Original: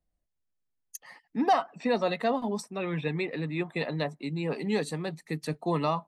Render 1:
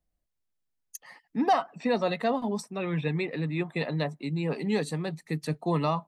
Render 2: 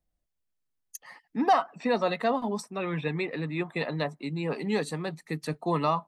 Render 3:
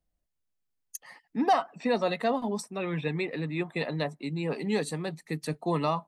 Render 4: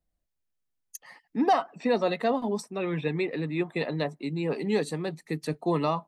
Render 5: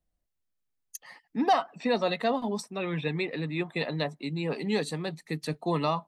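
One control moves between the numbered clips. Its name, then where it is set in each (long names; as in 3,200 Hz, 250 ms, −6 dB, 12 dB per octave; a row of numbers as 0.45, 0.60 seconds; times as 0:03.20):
dynamic equaliser, frequency: 140, 1,200, 9,400, 370, 3,700 Hertz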